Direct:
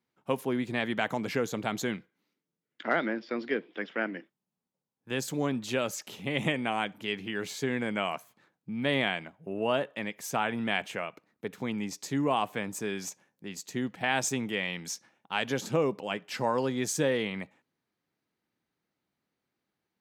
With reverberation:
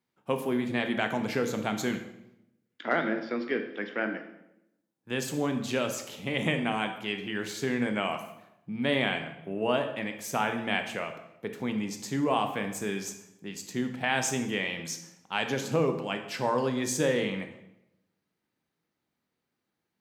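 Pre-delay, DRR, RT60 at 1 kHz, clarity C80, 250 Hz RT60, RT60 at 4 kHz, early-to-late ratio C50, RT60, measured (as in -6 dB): 16 ms, 6.0 dB, 0.80 s, 11.5 dB, 1.0 s, 0.70 s, 9.0 dB, 0.85 s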